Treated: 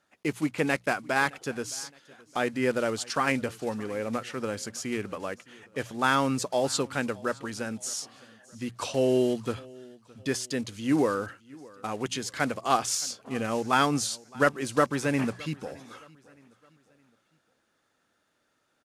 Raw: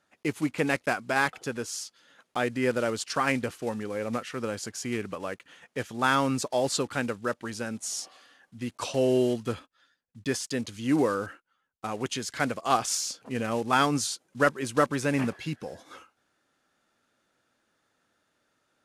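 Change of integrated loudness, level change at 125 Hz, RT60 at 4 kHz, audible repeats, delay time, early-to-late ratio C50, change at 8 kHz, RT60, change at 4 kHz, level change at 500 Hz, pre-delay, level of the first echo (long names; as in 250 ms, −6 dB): 0.0 dB, −0.5 dB, no reverb audible, 2, 616 ms, no reverb audible, 0.0 dB, no reverb audible, 0.0 dB, 0.0 dB, no reverb audible, −23.0 dB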